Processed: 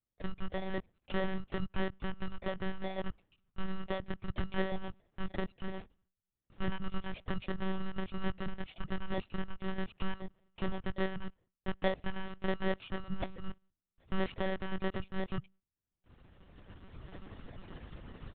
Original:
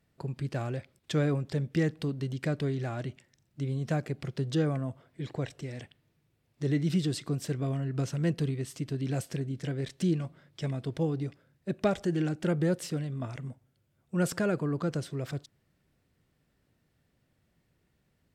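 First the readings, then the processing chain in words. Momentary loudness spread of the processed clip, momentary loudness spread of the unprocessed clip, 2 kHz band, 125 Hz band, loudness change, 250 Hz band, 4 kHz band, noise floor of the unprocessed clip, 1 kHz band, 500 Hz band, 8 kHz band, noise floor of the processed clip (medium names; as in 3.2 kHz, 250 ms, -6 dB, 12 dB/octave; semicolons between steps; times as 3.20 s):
14 LU, 10 LU, 0.0 dB, -12.5 dB, -7.5 dB, -7.5 dB, -2.5 dB, -74 dBFS, 0.0 dB, -5.5 dB, under -35 dB, under -85 dBFS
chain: bit-reversed sample order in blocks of 32 samples; recorder AGC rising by 14 dB/s; gate with hold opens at -48 dBFS; hum notches 50/100/150 Hz; reverb removal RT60 1.2 s; comb 1.7 ms, depth 51%; monotone LPC vocoder at 8 kHz 190 Hz; trim -2 dB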